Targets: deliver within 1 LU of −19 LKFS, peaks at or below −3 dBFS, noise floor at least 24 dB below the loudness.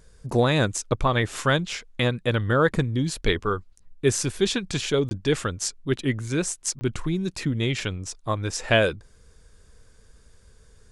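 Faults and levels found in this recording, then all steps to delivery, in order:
number of dropouts 2; longest dropout 20 ms; integrated loudness −25.0 LKFS; sample peak −4.5 dBFS; target loudness −19.0 LKFS
→ repair the gap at 0:05.09/0:06.79, 20 ms
level +6 dB
brickwall limiter −3 dBFS

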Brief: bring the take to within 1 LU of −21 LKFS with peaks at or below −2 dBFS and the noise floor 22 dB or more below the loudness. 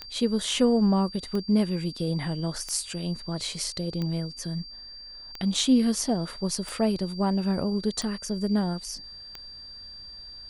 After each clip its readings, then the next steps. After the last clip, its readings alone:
number of clicks 8; interfering tone 4,700 Hz; level of the tone −41 dBFS; integrated loudness −27.0 LKFS; sample peak −11.5 dBFS; target loudness −21.0 LKFS
→ click removal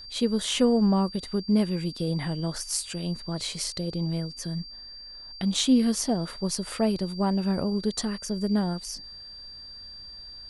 number of clicks 0; interfering tone 4,700 Hz; level of the tone −41 dBFS
→ notch filter 4,700 Hz, Q 30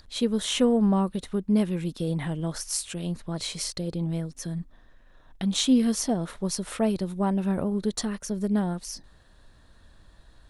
interfering tone none found; integrated loudness −27.0 LKFS; sample peak −11.5 dBFS; target loudness −21.0 LKFS
→ level +6 dB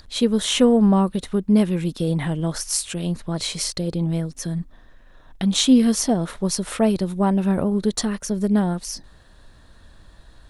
integrated loudness −21.0 LKFS; sample peak −5.5 dBFS; background noise floor −49 dBFS

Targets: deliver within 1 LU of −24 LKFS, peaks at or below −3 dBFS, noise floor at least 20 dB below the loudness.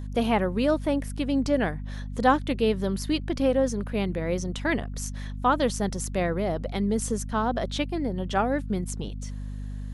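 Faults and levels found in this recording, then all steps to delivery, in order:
mains hum 50 Hz; hum harmonics up to 250 Hz; level of the hum −31 dBFS; integrated loudness −27.0 LKFS; sample peak −7.5 dBFS; target loudness −24.0 LKFS
→ mains-hum notches 50/100/150/200/250 Hz
level +3 dB

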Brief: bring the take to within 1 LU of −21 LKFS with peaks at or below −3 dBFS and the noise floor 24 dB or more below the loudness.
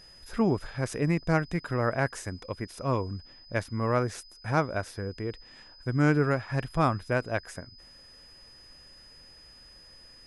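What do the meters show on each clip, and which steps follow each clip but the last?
interfering tone 5,000 Hz; level of the tone −51 dBFS; integrated loudness −29.5 LKFS; sample peak −10.0 dBFS; target loudness −21.0 LKFS
→ notch filter 5,000 Hz, Q 30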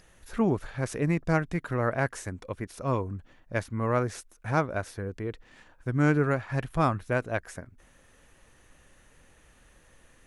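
interfering tone none found; integrated loudness −29.5 LKFS; sample peak −10.0 dBFS; target loudness −21.0 LKFS
→ level +8.5 dB
brickwall limiter −3 dBFS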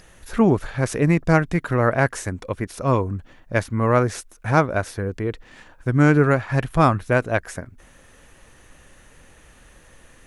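integrated loudness −21.0 LKFS; sample peak −3.0 dBFS; background noise floor −51 dBFS

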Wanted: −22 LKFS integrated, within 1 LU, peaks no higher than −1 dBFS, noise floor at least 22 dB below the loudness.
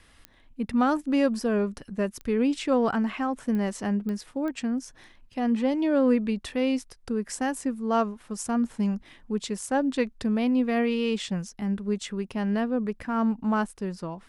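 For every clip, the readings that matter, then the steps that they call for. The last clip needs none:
number of clicks 5; integrated loudness −27.5 LKFS; sample peak −11.0 dBFS; target loudness −22.0 LKFS
→ click removal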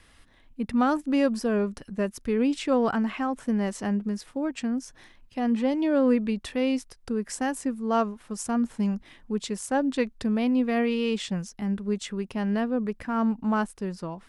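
number of clicks 0; integrated loudness −27.5 LKFS; sample peak −11.0 dBFS; target loudness −22.0 LKFS
→ level +5.5 dB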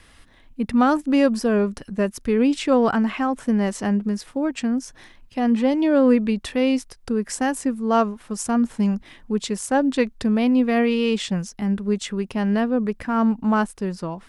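integrated loudness −22.0 LKFS; sample peak −5.5 dBFS; background noise floor −51 dBFS

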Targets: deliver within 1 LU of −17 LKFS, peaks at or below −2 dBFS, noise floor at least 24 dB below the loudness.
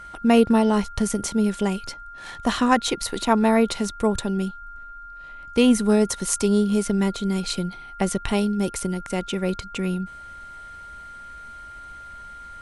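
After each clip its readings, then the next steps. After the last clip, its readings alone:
interfering tone 1,400 Hz; level of the tone −38 dBFS; integrated loudness −22.5 LKFS; sample peak −3.0 dBFS; target loudness −17.0 LKFS
→ notch filter 1,400 Hz, Q 30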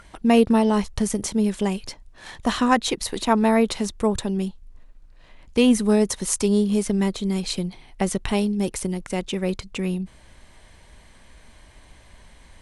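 interfering tone none found; integrated loudness −22.5 LKFS; sample peak −3.5 dBFS; target loudness −17.0 LKFS
→ level +5.5 dB
brickwall limiter −2 dBFS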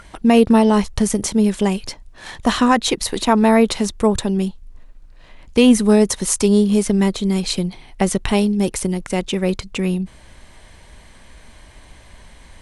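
integrated loudness −17.5 LKFS; sample peak −2.0 dBFS; background noise floor −45 dBFS

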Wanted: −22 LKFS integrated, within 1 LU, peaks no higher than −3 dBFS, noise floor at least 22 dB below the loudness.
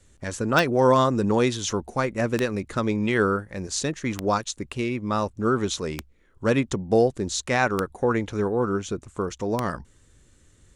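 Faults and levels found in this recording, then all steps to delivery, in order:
number of clicks 6; integrated loudness −24.5 LKFS; sample peak −4.5 dBFS; target loudness −22.0 LKFS
→ click removal
level +2.5 dB
brickwall limiter −3 dBFS

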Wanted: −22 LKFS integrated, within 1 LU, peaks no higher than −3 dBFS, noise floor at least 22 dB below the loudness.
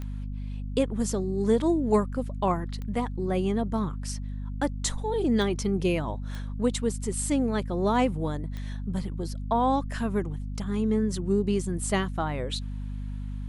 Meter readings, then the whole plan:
number of clicks 5; mains hum 50 Hz; hum harmonics up to 250 Hz; level of the hum −31 dBFS; integrated loudness −28.5 LKFS; sample peak −11.0 dBFS; target loudness −22.0 LKFS
→ click removal
hum removal 50 Hz, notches 5
level +6.5 dB

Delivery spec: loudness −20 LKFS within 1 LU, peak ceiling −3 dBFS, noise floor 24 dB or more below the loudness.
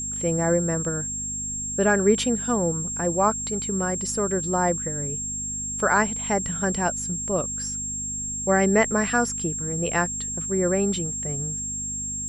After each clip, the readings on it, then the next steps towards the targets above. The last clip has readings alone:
mains hum 50 Hz; hum harmonics up to 250 Hz; level of the hum −37 dBFS; interfering tone 7,500 Hz; level of the tone −28 dBFS; integrated loudness −24.0 LKFS; sample peak −6.5 dBFS; target loudness −20.0 LKFS
→ hum removal 50 Hz, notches 5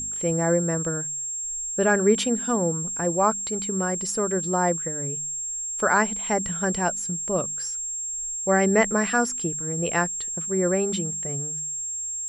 mains hum none found; interfering tone 7,500 Hz; level of the tone −28 dBFS
→ notch filter 7,500 Hz, Q 30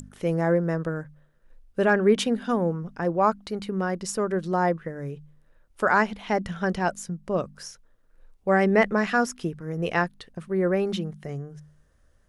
interfering tone none found; integrated loudness −25.5 LKFS; sample peak −6.5 dBFS; target loudness −20.0 LKFS
→ level +5.5 dB
brickwall limiter −3 dBFS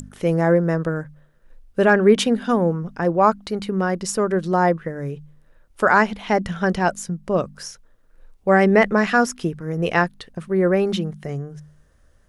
integrated loudness −20.0 LKFS; sample peak −3.0 dBFS; background noise floor −56 dBFS

